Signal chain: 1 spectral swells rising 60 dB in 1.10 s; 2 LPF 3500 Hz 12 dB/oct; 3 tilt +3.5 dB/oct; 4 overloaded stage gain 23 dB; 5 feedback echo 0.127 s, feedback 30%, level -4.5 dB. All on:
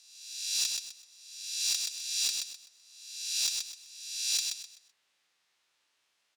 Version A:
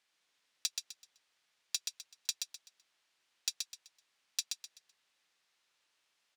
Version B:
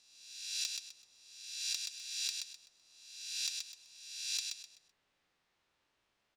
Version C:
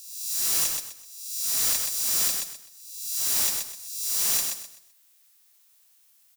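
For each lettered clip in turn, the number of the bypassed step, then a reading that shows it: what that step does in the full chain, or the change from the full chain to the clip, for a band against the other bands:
1, crest factor change +6.0 dB; 3, crest factor change +4.5 dB; 2, crest factor change -6.5 dB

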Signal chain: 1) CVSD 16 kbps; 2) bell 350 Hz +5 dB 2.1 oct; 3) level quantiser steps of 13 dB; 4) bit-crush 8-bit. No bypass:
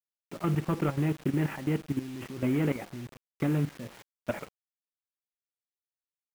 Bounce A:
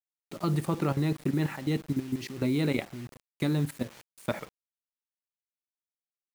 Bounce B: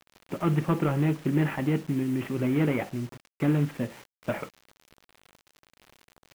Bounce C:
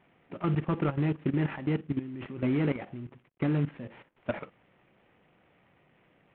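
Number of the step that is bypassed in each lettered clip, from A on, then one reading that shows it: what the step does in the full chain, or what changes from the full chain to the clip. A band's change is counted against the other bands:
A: 1, 4 kHz band +5.5 dB; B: 3, momentary loudness spread change -5 LU; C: 4, distortion -23 dB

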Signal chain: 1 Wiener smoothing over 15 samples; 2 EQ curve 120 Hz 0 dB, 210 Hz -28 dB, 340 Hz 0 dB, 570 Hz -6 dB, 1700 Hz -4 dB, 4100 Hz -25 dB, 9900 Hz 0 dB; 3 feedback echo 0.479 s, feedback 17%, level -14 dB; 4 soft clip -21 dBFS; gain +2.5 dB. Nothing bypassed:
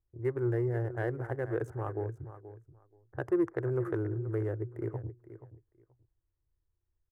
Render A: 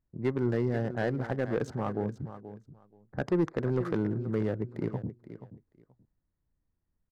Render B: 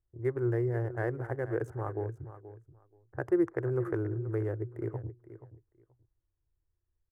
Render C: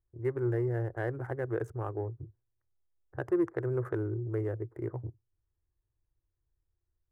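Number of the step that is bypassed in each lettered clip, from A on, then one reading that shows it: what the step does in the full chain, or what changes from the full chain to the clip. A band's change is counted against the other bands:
2, 125 Hz band -2.5 dB; 4, distortion -23 dB; 3, momentary loudness spread change -5 LU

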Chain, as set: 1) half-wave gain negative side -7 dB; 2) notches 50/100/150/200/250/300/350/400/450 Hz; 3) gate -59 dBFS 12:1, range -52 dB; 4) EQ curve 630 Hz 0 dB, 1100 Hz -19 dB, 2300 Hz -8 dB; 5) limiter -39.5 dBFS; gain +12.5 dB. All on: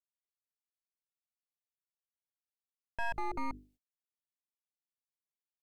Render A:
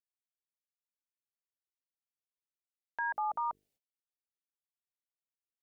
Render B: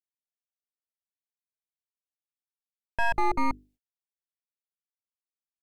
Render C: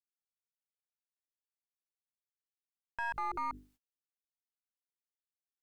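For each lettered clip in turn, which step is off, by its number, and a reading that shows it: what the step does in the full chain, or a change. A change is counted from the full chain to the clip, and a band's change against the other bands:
1, distortion -8 dB; 5, mean gain reduction 8.0 dB; 4, crest factor change +2.0 dB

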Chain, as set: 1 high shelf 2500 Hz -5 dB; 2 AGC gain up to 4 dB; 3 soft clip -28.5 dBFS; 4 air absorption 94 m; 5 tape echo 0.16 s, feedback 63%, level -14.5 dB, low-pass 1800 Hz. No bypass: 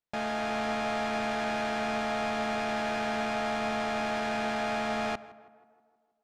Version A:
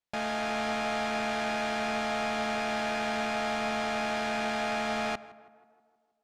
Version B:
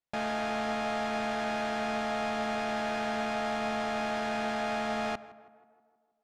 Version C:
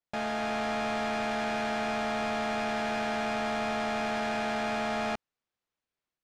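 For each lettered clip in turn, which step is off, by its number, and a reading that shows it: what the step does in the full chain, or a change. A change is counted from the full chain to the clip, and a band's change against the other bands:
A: 1, 8 kHz band +3.0 dB; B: 2, loudness change -1.0 LU; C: 5, echo-to-direct -38.5 dB to none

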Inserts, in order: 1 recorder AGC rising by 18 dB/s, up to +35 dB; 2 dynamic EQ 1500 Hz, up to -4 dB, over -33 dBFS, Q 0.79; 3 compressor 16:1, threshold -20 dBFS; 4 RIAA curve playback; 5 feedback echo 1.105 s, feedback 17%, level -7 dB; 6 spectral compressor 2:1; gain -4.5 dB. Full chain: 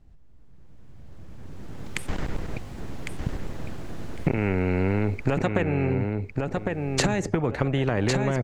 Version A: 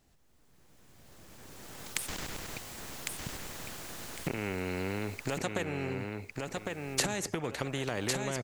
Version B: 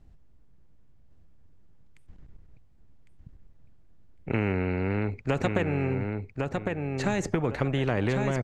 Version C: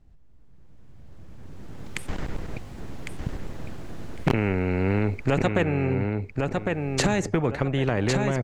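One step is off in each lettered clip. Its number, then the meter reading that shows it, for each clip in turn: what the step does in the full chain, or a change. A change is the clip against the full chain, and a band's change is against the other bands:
4, 8 kHz band +9.5 dB; 1, momentary loudness spread change -9 LU; 3, mean gain reduction 2.0 dB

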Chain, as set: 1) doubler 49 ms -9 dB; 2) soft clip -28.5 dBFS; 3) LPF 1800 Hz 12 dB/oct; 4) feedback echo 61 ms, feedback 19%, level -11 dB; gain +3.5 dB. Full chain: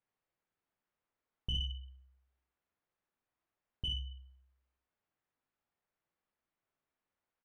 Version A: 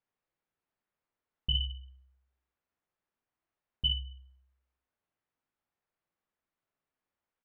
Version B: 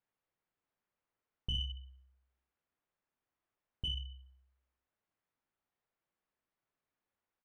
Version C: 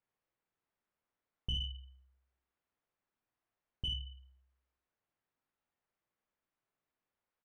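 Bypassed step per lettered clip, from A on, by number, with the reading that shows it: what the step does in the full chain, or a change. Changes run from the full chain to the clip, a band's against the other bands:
2, distortion -7 dB; 1, momentary loudness spread change +1 LU; 4, momentary loudness spread change -2 LU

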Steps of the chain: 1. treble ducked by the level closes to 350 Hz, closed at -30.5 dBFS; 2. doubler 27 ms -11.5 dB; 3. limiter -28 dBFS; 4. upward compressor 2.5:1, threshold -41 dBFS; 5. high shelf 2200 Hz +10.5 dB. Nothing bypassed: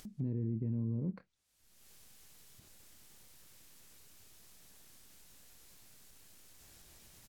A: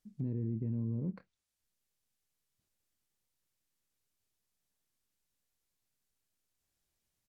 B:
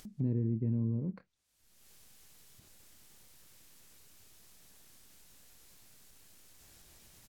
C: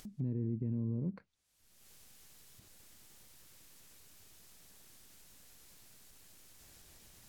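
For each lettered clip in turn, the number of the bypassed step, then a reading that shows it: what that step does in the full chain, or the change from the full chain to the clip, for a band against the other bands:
4, momentary loudness spread change -15 LU; 3, mean gain reduction 2.5 dB; 2, momentary loudness spread change -15 LU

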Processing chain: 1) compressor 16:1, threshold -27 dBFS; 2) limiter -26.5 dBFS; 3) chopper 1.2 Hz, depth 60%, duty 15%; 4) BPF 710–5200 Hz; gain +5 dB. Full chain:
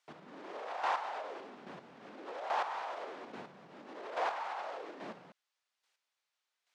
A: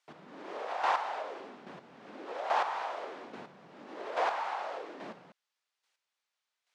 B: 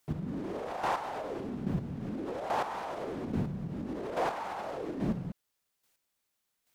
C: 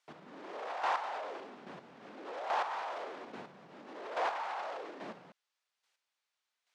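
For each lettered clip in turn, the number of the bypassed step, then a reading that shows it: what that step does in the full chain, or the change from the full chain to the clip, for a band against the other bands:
2, mean gain reduction 2.5 dB; 4, 125 Hz band +25.0 dB; 1, mean gain reduction 6.5 dB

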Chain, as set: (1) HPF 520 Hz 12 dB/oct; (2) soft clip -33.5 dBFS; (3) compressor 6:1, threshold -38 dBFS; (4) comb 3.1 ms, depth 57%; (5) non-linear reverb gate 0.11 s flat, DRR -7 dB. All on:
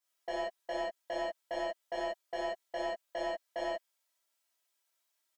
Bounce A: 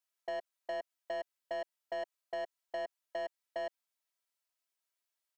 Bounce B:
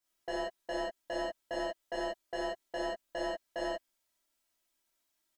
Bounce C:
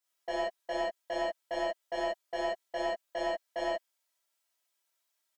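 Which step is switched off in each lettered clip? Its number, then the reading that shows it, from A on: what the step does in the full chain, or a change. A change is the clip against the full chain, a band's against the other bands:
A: 5, crest factor change -3.0 dB; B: 1, 250 Hz band +3.0 dB; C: 3, mean gain reduction 3.0 dB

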